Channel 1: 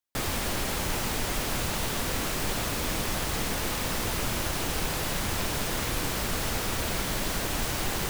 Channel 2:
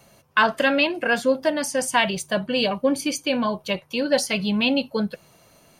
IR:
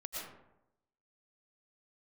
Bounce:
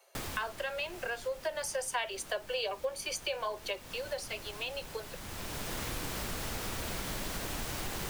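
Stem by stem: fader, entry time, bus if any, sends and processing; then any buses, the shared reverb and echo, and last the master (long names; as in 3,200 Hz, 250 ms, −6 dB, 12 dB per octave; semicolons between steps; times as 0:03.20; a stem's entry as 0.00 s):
−3.0 dB, 0.00 s, no send, automatic ducking −13 dB, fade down 0.65 s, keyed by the second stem
0:01.22 −9 dB → 0:01.57 −1 dB → 0:03.64 −1 dB → 0:04.10 −11.5 dB, 0.00 s, no send, Butterworth high-pass 360 Hz 96 dB per octave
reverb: not used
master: downward compressor 3 to 1, threshold −35 dBFS, peak gain reduction 14.5 dB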